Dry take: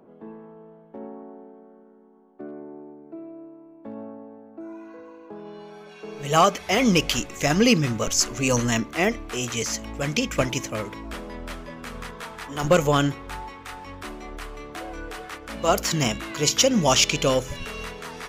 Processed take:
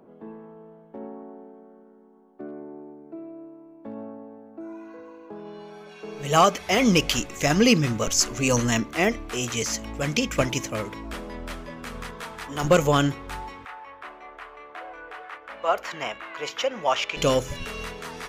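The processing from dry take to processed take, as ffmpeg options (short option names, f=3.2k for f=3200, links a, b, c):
-filter_complex "[0:a]asettb=1/sr,asplit=3[a][b][c];[a]atrim=end=13.654[d];[b]atrim=start=13.65:end=17.17,asetpts=PTS-STARTPTS,afade=t=in:d=0.004:c=qsin,afade=t=out:st=3.516:d=0.004:c=qsin,acrossover=split=500 2700:gain=0.0708 1 0.0891[e][f][g];[e][f][g]amix=inputs=3:normalize=0[h];[c]atrim=start=17.166[i];[d][h]acrossfade=d=0.004:c1=hsin:c2=qsin[j];[j][i]acrossfade=d=0.004:c1=qsin:c2=hsin"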